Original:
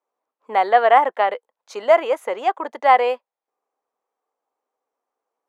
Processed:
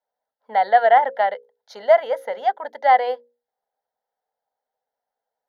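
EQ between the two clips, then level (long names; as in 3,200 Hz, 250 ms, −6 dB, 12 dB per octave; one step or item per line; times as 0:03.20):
low-shelf EQ 210 Hz +4.5 dB
mains-hum notches 60/120/180/240/300/360/420/480/540 Hz
phaser with its sweep stopped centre 1,700 Hz, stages 8
0.0 dB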